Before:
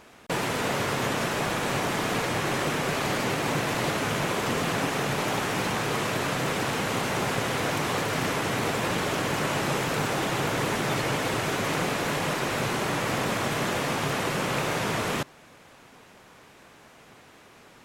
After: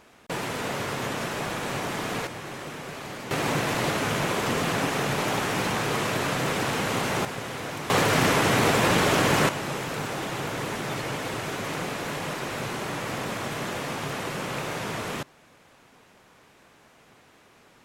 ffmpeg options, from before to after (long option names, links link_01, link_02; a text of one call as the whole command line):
ffmpeg -i in.wav -af "asetnsamples=nb_out_samples=441:pad=0,asendcmd='2.27 volume volume -10dB;3.31 volume volume 1dB;7.25 volume volume -6.5dB;7.9 volume volume 6dB;9.49 volume volume -4dB',volume=-3dB" out.wav